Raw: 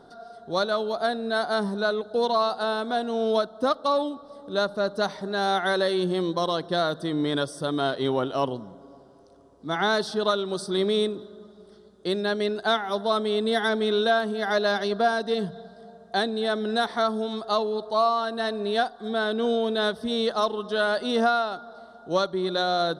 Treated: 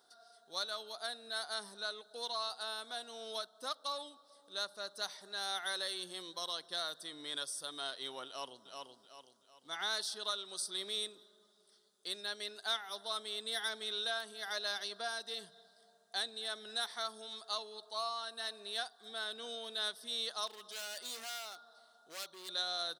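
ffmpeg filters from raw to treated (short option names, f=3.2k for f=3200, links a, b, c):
-filter_complex "[0:a]asplit=2[a][b];[b]afade=t=in:st=8.27:d=0.01,afade=t=out:st=8.67:d=0.01,aecho=0:1:380|760|1140|1520|1900:0.630957|0.252383|0.100953|0.0403813|0.0161525[c];[a][c]amix=inputs=2:normalize=0,asettb=1/sr,asplit=3[d][e][f];[d]atrim=end=20.474[g];[e]atrim=start=20.47:end=22.49,asetpts=PTS-STARTPTS,afade=t=in:d=0.004:c=qsin,afade=t=out:st=2.016:d=0.004:c=qsin,asoftclip=type=hard:threshold=-28dB[h];[f]atrim=start=22.486[i];[g][h]acrossfade=d=0.004:c1=hsin:c2=qsin[j];[j][i]acrossfade=d=0.004:c1=qsin:c2=hsin,aderivative"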